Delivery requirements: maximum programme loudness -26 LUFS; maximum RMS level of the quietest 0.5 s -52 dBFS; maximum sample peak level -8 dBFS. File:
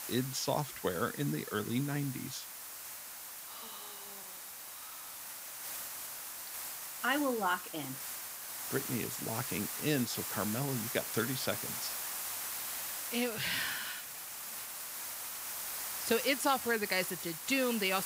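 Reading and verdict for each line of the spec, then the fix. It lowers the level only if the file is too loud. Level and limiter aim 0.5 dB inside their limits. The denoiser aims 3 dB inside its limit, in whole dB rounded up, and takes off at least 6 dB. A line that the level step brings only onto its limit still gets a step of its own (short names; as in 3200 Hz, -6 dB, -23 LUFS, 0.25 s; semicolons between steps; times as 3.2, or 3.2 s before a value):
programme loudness -35.5 LUFS: OK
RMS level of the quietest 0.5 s -47 dBFS: fail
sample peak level -15.5 dBFS: OK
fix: denoiser 8 dB, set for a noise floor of -47 dBFS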